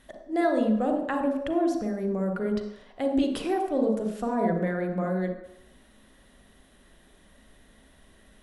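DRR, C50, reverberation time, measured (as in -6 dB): 2.5 dB, 4.0 dB, 0.75 s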